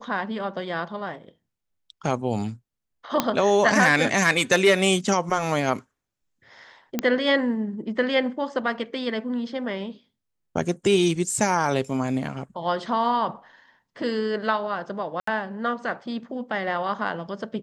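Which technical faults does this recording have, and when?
3.20 s: pop -5 dBFS
6.99 s: pop -9 dBFS
15.20–15.27 s: dropout 74 ms

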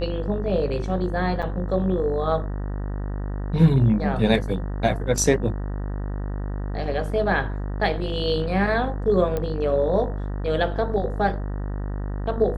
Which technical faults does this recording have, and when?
buzz 50 Hz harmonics 38 -28 dBFS
1.42–1.43 s: dropout 6.8 ms
9.37 s: pop -14 dBFS

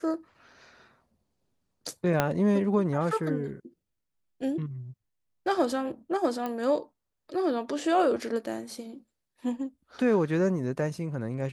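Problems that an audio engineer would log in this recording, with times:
2.20 s: pop -9 dBFS
6.46 s: pop -20 dBFS

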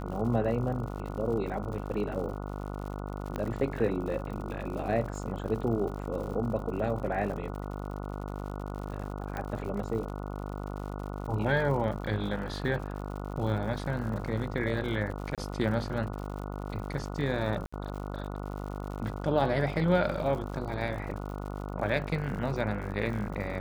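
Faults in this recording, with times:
buzz 50 Hz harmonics 29 -37 dBFS
crackle 95 per s -39 dBFS
3.36 s: pop -21 dBFS
9.37 s: pop -22 dBFS
15.35–15.38 s: dropout 27 ms
17.66–17.73 s: dropout 65 ms

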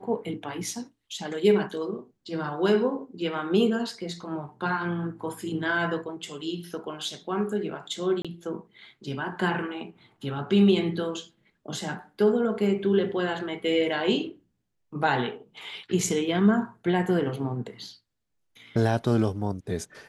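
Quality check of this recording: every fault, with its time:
8.22–8.25 s: dropout 26 ms

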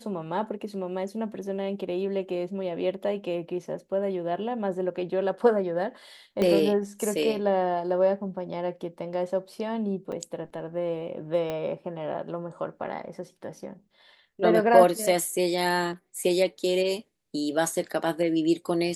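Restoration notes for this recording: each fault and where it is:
6.42 s: pop -14 dBFS
10.12 s: dropout 4.4 ms
11.50 s: pop -18 dBFS

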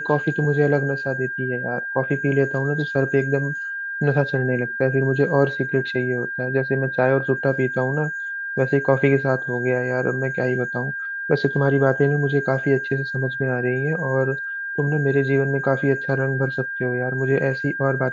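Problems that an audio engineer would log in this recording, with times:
whine 1.6 kHz -26 dBFS

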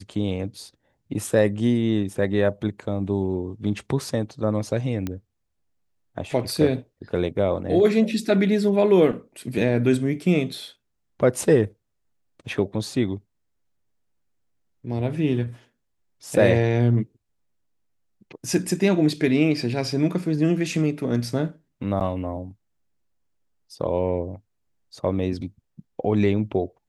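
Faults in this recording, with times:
5.07 s: pop -15 dBFS
22.00–22.01 s: dropout 8.4 ms

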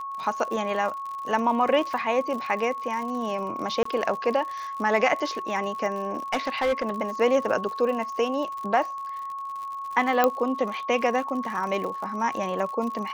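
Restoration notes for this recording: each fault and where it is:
crackle 76 per s -33 dBFS
whine 1.1 kHz -31 dBFS
3.83–3.85 s: dropout 24 ms
6.17–6.90 s: clipped -19.5 dBFS
10.24 s: pop -7 dBFS

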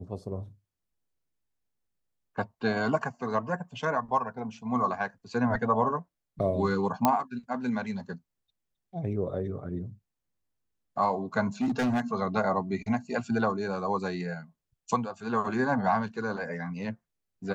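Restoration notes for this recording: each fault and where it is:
7.05 s: pop -8 dBFS
11.61–12.01 s: clipped -23.5 dBFS

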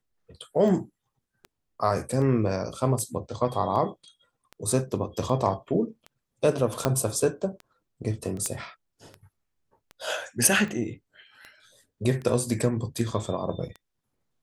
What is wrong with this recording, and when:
tick 78 rpm
6.85 s: pop -8 dBFS
8.46 s: pop -14 dBFS

